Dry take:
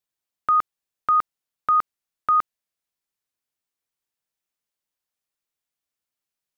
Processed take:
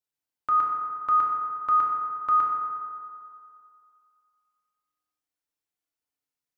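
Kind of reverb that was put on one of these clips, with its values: FDN reverb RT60 2.4 s, low-frequency decay 0.85×, high-frequency decay 0.45×, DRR -3 dB; trim -7.5 dB

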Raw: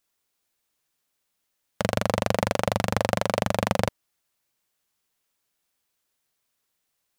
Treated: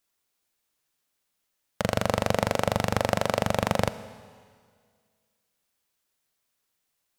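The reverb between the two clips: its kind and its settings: algorithmic reverb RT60 1.9 s, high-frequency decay 1×, pre-delay 5 ms, DRR 14 dB; trim -1 dB

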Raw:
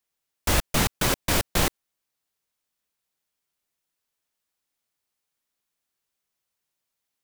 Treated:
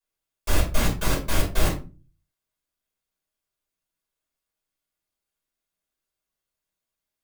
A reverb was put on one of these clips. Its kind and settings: simulated room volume 160 m³, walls furnished, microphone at 5.3 m; trim -13.5 dB

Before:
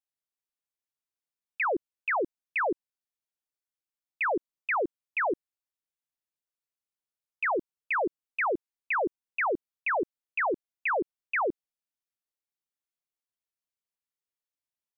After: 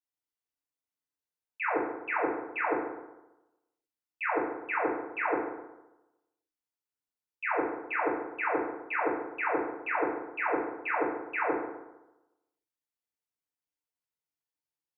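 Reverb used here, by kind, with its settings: FDN reverb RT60 1 s, low-frequency decay 1×, high-frequency decay 0.5×, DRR -10 dB; trim -12 dB

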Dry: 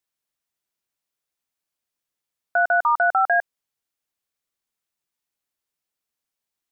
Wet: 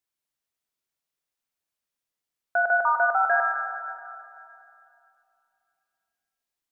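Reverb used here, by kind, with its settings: algorithmic reverb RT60 2.7 s, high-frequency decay 0.85×, pre-delay 10 ms, DRR 3 dB; trim -3.5 dB

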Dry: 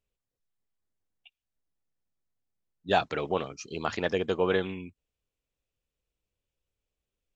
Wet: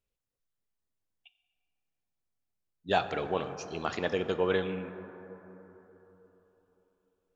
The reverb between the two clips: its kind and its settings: plate-style reverb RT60 3.9 s, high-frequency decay 0.3×, DRR 9.5 dB; trim -2.5 dB

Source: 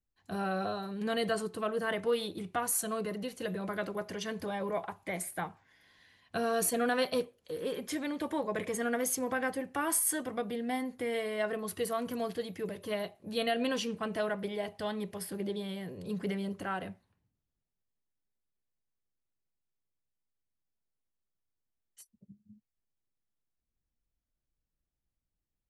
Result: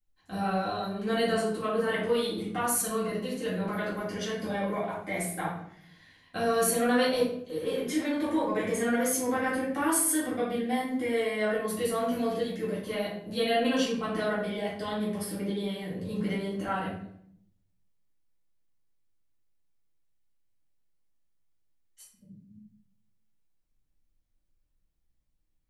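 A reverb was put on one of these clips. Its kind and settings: simulated room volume 110 m³, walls mixed, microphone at 2.1 m; trim -4 dB

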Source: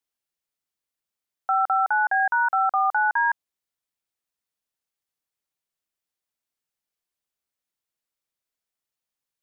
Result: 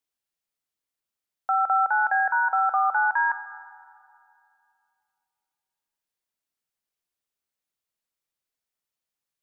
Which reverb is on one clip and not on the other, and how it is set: algorithmic reverb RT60 2.6 s, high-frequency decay 0.55×, pre-delay 10 ms, DRR 13 dB; trim -1 dB

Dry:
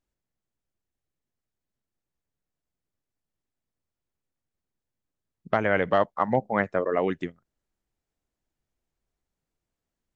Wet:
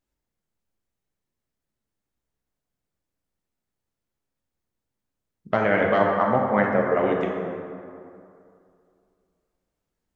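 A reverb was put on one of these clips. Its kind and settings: plate-style reverb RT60 2.5 s, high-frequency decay 0.5×, DRR -1 dB

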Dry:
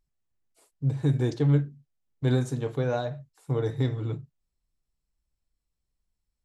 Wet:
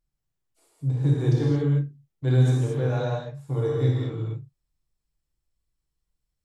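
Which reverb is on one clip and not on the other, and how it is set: gated-style reverb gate 250 ms flat, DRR -5 dB; trim -5 dB

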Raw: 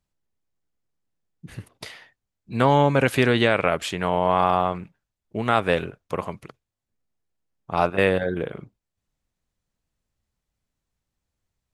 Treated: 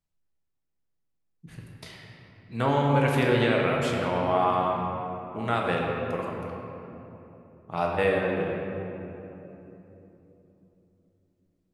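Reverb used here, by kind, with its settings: simulated room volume 180 m³, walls hard, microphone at 0.54 m; trim -8 dB

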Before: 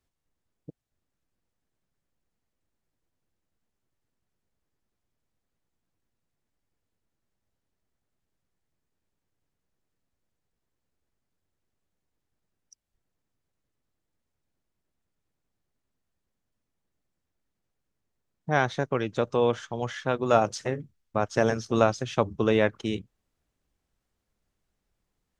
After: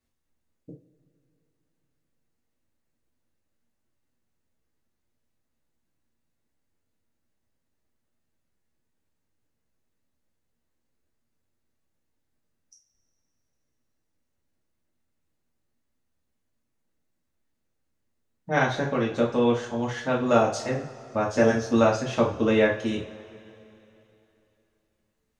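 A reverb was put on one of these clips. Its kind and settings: two-slope reverb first 0.36 s, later 3.1 s, from -22 dB, DRR -4 dB; trim -3.5 dB

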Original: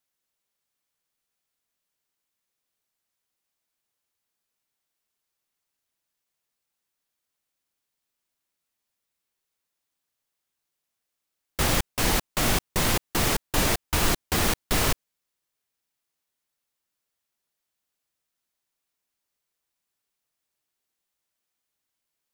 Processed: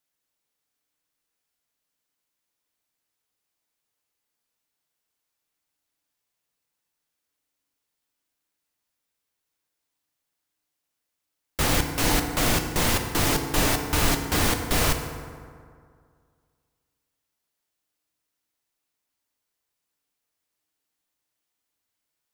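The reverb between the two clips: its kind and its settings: FDN reverb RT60 2.1 s, low-frequency decay 1×, high-frequency decay 0.5×, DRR 4.5 dB

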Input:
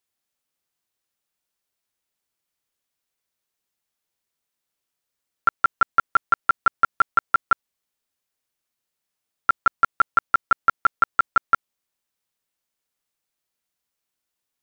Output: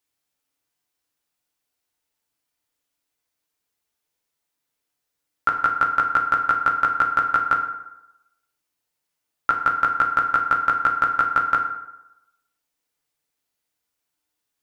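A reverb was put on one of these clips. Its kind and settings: FDN reverb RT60 0.92 s, low-frequency decay 0.9×, high-frequency decay 0.6×, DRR 1.5 dB

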